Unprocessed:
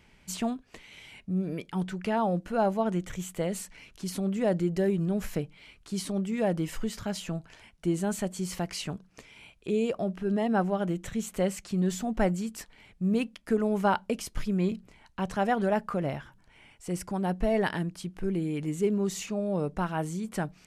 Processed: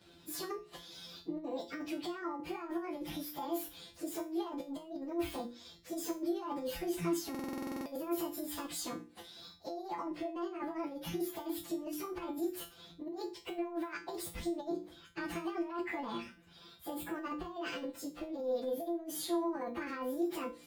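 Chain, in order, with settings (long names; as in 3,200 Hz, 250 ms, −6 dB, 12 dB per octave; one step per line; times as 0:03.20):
phase-vocoder pitch shift without resampling +8.5 semitones
high-pass filter 69 Hz
high-shelf EQ 4,500 Hz −5.5 dB
mains-hum notches 60/120/180/240/300/360/420/480/540 Hz
compressor whose output falls as the input rises −35 dBFS, ratio −0.5
brickwall limiter −31 dBFS, peak gain reduction 9.5 dB
tuned comb filter 170 Hz, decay 0.3 s, harmonics all, mix 90%
buffer that repeats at 0:07.30, samples 2,048, times 11
level +12 dB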